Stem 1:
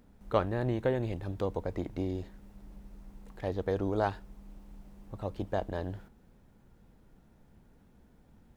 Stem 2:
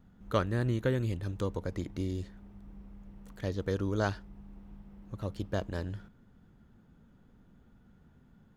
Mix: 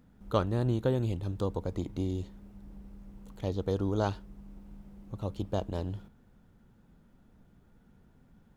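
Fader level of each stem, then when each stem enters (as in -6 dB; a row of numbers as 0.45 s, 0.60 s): -5.0 dB, -2.5 dB; 0.00 s, 0.00 s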